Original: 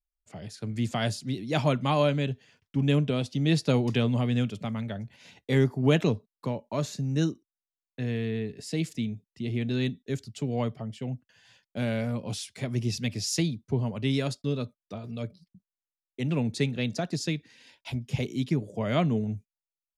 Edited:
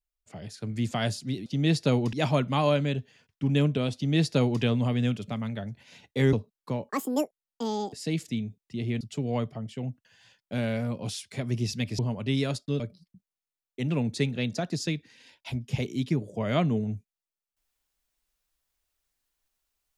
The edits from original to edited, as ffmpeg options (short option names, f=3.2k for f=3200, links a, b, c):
-filter_complex "[0:a]asplit=9[a][b][c][d][e][f][g][h][i];[a]atrim=end=1.462[j];[b]atrim=start=3.278:end=3.952[k];[c]atrim=start=1.458:end=5.662[l];[d]atrim=start=6.088:end=6.654[m];[e]atrim=start=6.65:end=8.59,asetpts=PTS-STARTPTS,asetrate=82467,aresample=44100[n];[f]atrim=start=8.586:end=9.672[o];[g]atrim=start=10.248:end=13.232[p];[h]atrim=start=13.748:end=14.562[q];[i]atrim=start=15.198[r];[j][k]acrossfade=d=0.004:c1=hsin:c2=hsin[s];[s][l]acrossfade=d=0.004:c1=hsin:c2=hsin[t];[t][m]acrossfade=d=0.004:c1=hsin:c2=hsin[u];[u][n]acrossfade=d=0.004:c1=hsin:c2=hsin[v];[v][o]acrossfade=d=0.004:c1=hsin:c2=hsin[w];[w][p]acrossfade=d=0.004:c1=hsin:c2=hsin[x];[x][q]acrossfade=d=0.004:c1=hsin:c2=hsin[y];[y][r]acrossfade=d=0.004:c1=hsin:c2=hsin"